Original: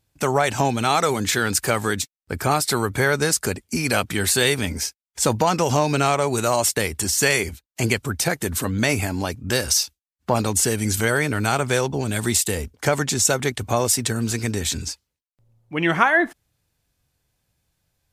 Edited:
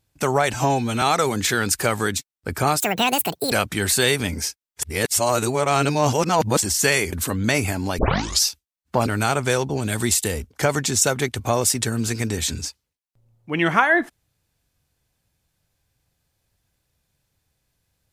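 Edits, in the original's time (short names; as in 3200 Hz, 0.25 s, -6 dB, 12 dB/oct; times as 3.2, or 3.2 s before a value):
0.54–0.86 stretch 1.5×
2.64–3.9 speed 176%
5.2–7.01 reverse
7.51–8.47 cut
9.33 tape start 0.45 s
10.41–11.3 cut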